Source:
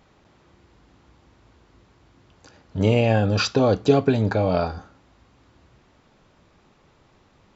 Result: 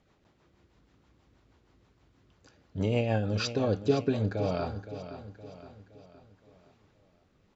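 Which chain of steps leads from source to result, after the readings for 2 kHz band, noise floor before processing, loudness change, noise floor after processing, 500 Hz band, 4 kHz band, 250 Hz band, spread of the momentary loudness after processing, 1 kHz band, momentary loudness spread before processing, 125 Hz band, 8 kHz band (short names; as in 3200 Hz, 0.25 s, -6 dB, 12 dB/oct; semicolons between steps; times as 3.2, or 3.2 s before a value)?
-10.0 dB, -59 dBFS, -9.5 dB, -67 dBFS, -9.0 dB, -9.0 dB, -8.5 dB, 19 LU, -10.5 dB, 10 LU, -8.5 dB, n/a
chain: rotary speaker horn 6.3 Hz, later 0.9 Hz, at 3.71; on a send: feedback echo 0.517 s, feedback 47%, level -12 dB; on the sum: gain -7.5 dB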